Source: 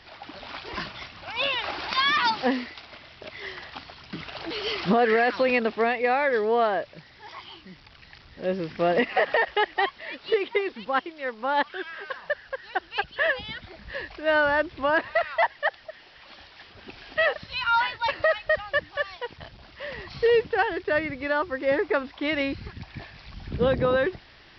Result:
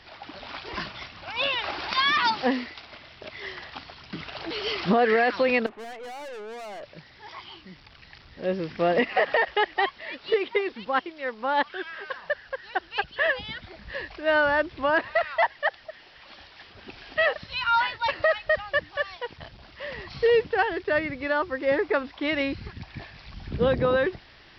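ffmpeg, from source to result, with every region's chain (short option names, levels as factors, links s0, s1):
-filter_complex "[0:a]asettb=1/sr,asplit=3[s0][s1][s2];[s0]atrim=end=5.664[s3];[s1]atrim=start=5.66:end=6.83,asetpts=PTS-STARTPTS,afade=t=in:d=0.004:c=qsin,afade=t=out:st=1.166:d=0.004:c=qsin,lowpass=1400,lowshelf=f=400:g=-9.5,aeval=exprs='(tanh(70.8*val(0)+0.3)-tanh(0.3))/70.8':c=same[s4];[s2]atrim=start=6.826[s5];[s3][s4]acrossfade=d=0.004:c1=hsin:c2=qsin[s6];[s6][s5]acrossfade=d=0.004:c1=qsin:c2=hsin"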